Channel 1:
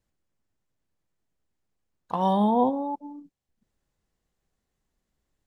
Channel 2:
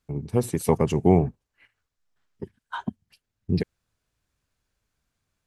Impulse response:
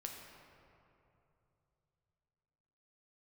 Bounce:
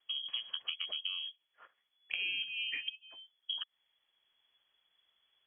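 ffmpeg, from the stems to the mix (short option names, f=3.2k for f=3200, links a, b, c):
-filter_complex "[0:a]highshelf=f=2.4k:g=10.5,flanger=delay=6:depth=4.4:regen=61:speed=1.4:shape=triangular,volume=3dB[a];[1:a]acompressor=threshold=-26dB:ratio=6,volume=0dB,asplit=2[b][c];[c]apad=whole_len=240871[d];[a][d]sidechaincompress=threshold=-42dB:ratio=8:attack=16:release=685[e];[e][b]amix=inputs=2:normalize=0,acrossover=split=990|2600[f][g][h];[f]acompressor=threshold=-32dB:ratio=4[i];[g]acompressor=threshold=-40dB:ratio=4[j];[h]acompressor=threshold=-54dB:ratio=4[k];[i][j][k]amix=inputs=3:normalize=0,lowpass=f=2.9k:t=q:w=0.5098,lowpass=f=2.9k:t=q:w=0.6013,lowpass=f=2.9k:t=q:w=0.9,lowpass=f=2.9k:t=q:w=2.563,afreqshift=-3400,acompressor=threshold=-40dB:ratio=1.5"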